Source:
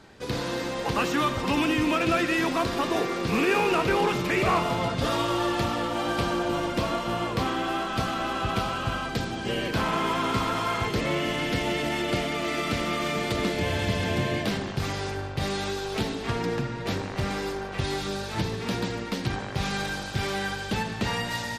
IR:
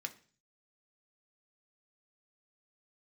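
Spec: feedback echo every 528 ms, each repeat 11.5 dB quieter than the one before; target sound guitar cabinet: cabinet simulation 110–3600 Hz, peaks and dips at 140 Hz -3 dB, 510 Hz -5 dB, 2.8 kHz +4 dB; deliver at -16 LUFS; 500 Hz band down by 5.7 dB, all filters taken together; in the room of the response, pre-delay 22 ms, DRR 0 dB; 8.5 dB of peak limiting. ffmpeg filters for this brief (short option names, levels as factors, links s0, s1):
-filter_complex "[0:a]equalizer=f=500:t=o:g=-6,alimiter=limit=0.075:level=0:latency=1,aecho=1:1:528|1056|1584:0.266|0.0718|0.0194,asplit=2[s0][s1];[1:a]atrim=start_sample=2205,adelay=22[s2];[s1][s2]afir=irnorm=-1:irlink=0,volume=1.12[s3];[s0][s3]amix=inputs=2:normalize=0,highpass=110,equalizer=f=140:t=q:w=4:g=-3,equalizer=f=510:t=q:w=4:g=-5,equalizer=f=2800:t=q:w=4:g=4,lowpass=f=3600:w=0.5412,lowpass=f=3600:w=1.3066,volume=4.47"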